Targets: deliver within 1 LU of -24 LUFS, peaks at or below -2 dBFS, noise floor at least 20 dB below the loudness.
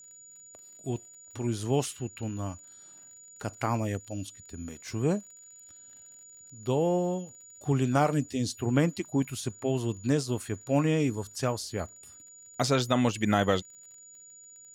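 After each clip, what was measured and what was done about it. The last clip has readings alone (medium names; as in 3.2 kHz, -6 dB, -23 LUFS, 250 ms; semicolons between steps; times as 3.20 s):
tick rate 32 per s; steady tone 6.9 kHz; tone level -49 dBFS; loudness -30.0 LUFS; peak level -9.0 dBFS; loudness target -24.0 LUFS
-> de-click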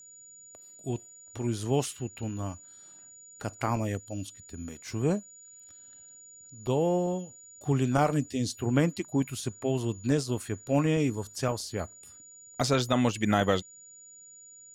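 tick rate 0.41 per s; steady tone 6.9 kHz; tone level -49 dBFS
-> band-stop 6.9 kHz, Q 30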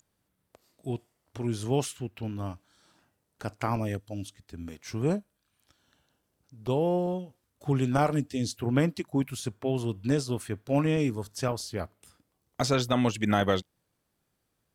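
steady tone not found; loudness -30.0 LUFS; peak level -10.0 dBFS; loudness target -24.0 LUFS
-> trim +6 dB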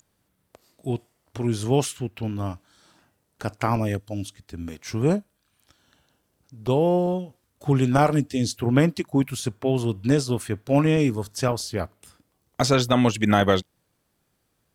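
loudness -24.0 LUFS; peak level -4.0 dBFS; noise floor -72 dBFS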